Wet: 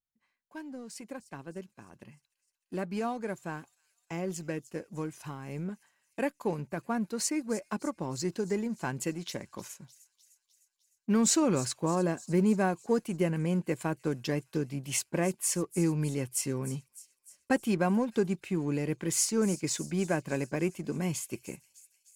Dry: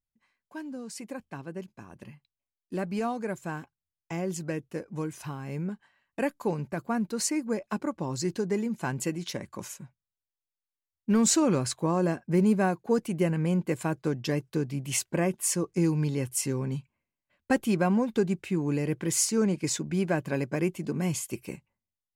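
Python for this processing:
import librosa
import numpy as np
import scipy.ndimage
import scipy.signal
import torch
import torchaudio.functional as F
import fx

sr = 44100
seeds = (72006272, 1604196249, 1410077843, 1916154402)

p1 = fx.low_shelf(x, sr, hz=71.0, db=-7.0)
p2 = np.sign(p1) * np.maximum(np.abs(p1) - 10.0 ** (-40.0 / 20.0), 0.0)
p3 = p1 + (p2 * librosa.db_to_amplitude(-6.5))
p4 = fx.echo_wet_highpass(p3, sr, ms=304, feedback_pct=60, hz=5300.0, wet_db=-13)
y = p4 * librosa.db_to_amplitude(-5.0)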